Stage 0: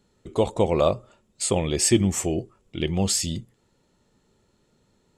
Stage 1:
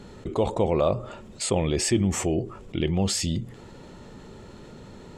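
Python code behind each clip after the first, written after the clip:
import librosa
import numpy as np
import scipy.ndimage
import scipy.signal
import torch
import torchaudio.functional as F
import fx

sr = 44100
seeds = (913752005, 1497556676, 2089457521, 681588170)

y = fx.lowpass(x, sr, hz=2700.0, slope=6)
y = fx.env_flatten(y, sr, amount_pct=50)
y = F.gain(torch.from_numpy(y), -4.5).numpy()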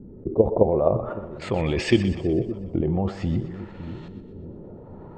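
y = fx.level_steps(x, sr, step_db=10)
y = fx.filter_lfo_lowpass(y, sr, shape='saw_up', hz=0.49, low_hz=280.0, high_hz=3700.0, q=1.4)
y = fx.echo_split(y, sr, split_hz=380.0, low_ms=561, high_ms=123, feedback_pct=52, wet_db=-12.0)
y = F.gain(torch.from_numpy(y), 6.5).numpy()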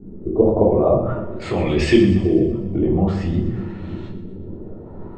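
y = fx.room_shoebox(x, sr, seeds[0], volume_m3=360.0, walls='furnished', distance_m=3.4)
y = F.gain(torch.from_numpy(y), -1.5).numpy()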